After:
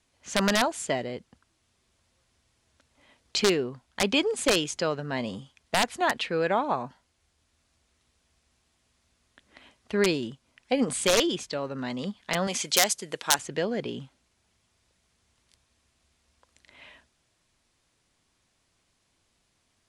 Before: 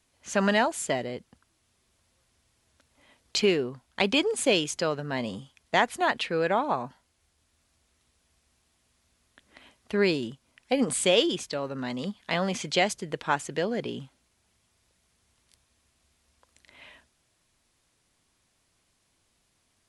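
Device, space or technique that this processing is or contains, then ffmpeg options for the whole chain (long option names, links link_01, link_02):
overflowing digital effects unit: -filter_complex "[0:a]aeval=exprs='(mod(3.98*val(0)+1,2)-1)/3.98':channel_layout=same,lowpass=9100,asettb=1/sr,asplit=3[link_01][link_02][link_03];[link_01]atrim=end=12.474[link_04];[link_02]atrim=start=12.47:end=13.39,asetpts=PTS-STARTPTS,afade=type=in:duration=0.004:curve=qsin,afade=type=out:start_time=0.916:duration=0.004:curve=qsin,aemphasis=mode=production:type=bsi[link_05];[link_03]atrim=start=13.386[link_06];[link_04][link_05]acrossfade=duration=0.004:curve1=hsin:curve2=qsin[link_07];[link_07][link_06]acrossfade=duration=0.004:curve1=qsin:curve2=hsin"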